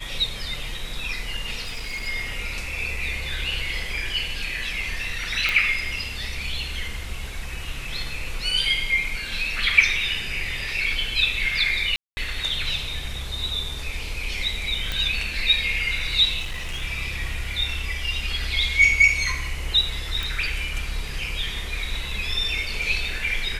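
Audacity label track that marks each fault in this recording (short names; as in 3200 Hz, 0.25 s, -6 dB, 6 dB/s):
1.630000	2.080000	clipped -26.5 dBFS
5.490000	5.490000	pop -9 dBFS
11.960000	12.170000	gap 0.21 s
14.920000	14.920000	pop -12 dBFS
16.400000	16.830000	clipped -25.5 dBFS
20.230000	20.230000	pop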